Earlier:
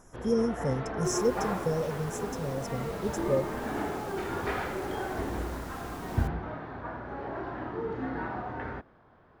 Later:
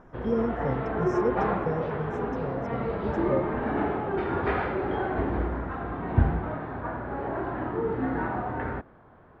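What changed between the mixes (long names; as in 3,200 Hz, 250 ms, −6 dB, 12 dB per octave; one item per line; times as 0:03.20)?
first sound +6.5 dB
second sound: muted
master: add high-frequency loss of the air 350 metres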